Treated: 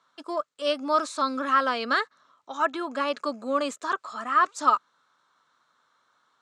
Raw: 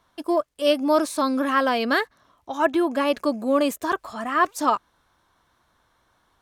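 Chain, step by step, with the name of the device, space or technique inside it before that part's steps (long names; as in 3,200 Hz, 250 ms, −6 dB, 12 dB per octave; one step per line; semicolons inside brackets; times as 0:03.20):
television speaker (loudspeaker in its box 170–8,000 Hz, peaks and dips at 200 Hz −7 dB, 330 Hz −8 dB, 710 Hz −4 dB, 1,300 Hz +10 dB, 4,000 Hz +5 dB, 7,300 Hz +6 dB)
level −5 dB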